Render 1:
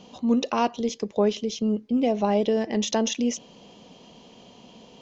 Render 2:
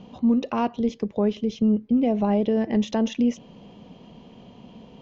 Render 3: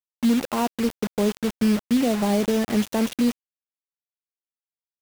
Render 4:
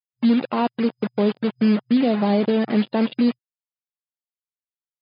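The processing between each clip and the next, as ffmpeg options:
-af "bass=f=250:g=9,treble=f=4000:g=-15,alimiter=limit=0.211:level=0:latency=1:release=231"
-af "acrusher=bits=4:mix=0:aa=0.000001"
-af "afftdn=nr=15:nf=-38,afftfilt=real='re*between(b*sr/4096,120,5000)':imag='im*between(b*sr/4096,120,5000)':win_size=4096:overlap=0.75,volume=1.33"

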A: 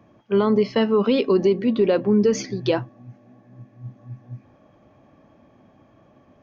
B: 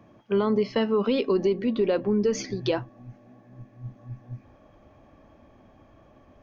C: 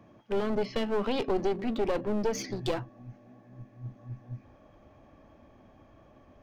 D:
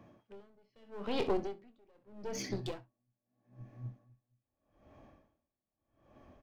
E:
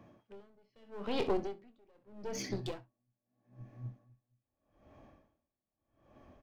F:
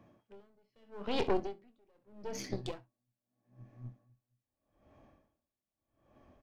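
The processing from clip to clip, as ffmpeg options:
-filter_complex "[0:a]asplit=2[s0][s1];[s1]acompressor=threshold=0.0501:ratio=6,volume=1.41[s2];[s0][s2]amix=inputs=2:normalize=0,asubboost=boost=6:cutoff=58,volume=0.422"
-af "aeval=exprs='clip(val(0),-1,0.0266)':c=same,volume=0.794"
-af "aecho=1:1:25|65:0.282|0.2,aeval=exprs='val(0)*pow(10,-37*(0.5-0.5*cos(2*PI*0.8*n/s))/20)':c=same,volume=0.794"
-af anull
-af "aeval=exprs='0.119*(cos(1*acos(clip(val(0)/0.119,-1,1)))-cos(1*PI/2))+0.0376*(cos(4*acos(clip(val(0)/0.119,-1,1)))-cos(4*PI/2))':c=same,volume=0.668"

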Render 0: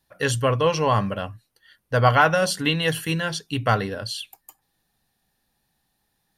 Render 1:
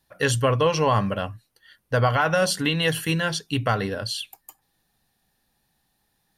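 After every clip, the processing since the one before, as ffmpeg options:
-af "alimiter=limit=0.251:level=0:latency=1:release=111,volume=1.19"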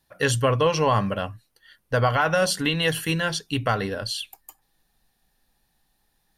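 -af "asubboost=boost=3.5:cutoff=51"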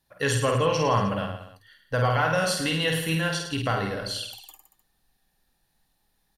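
-af "aecho=1:1:50|105|165.5|232|305.3:0.631|0.398|0.251|0.158|0.1,volume=0.631"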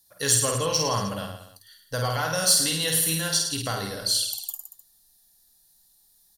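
-af "aexciter=amount=3.1:drive=9.8:freq=3800,volume=0.631"

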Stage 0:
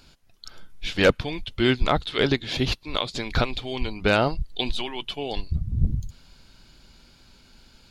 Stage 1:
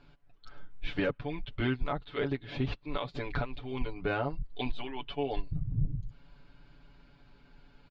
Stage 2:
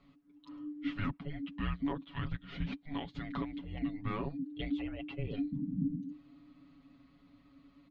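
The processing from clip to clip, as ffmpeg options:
-af "lowpass=2000,aecho=1:1:7:0.89,alimiter=limit=0.178:level=0:latency=1:release=405,volume=0.531"
-af "afreqshift=-300,volume=0.562"

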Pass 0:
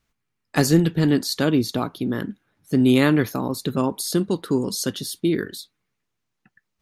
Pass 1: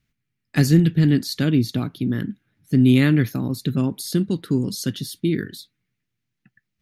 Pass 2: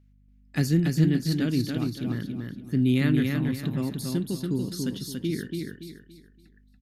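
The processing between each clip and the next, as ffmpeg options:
-af "equalizer=f=125:t=o:w=1:g=8,equalizer=f=250:t=o:w=1:g=3,equalizer=f=500:t=o:w=1:g=-5,equalizer=f=1000:t=o:w=1:g=-10,equalizer=f=2000:t=o:w=1:g=4,equalizer=f=8000:t=o:w=1:g=-4,volume=0.841"
-af "aeval=exprs='val(0)+0.00316*(sin(2*PI*50*n/s)+sin(2*PI*2*50*n/s)/2+sin(2*PI*3*50*n/s)/3+sin(2*PI*4*50*n/s)/4+sin(2*PI*5*50*n/s)/5)':c=same,aecho=1:1:284|568|852|1136:0.631|0.208|0.0687|0.0227,volume=0.422"

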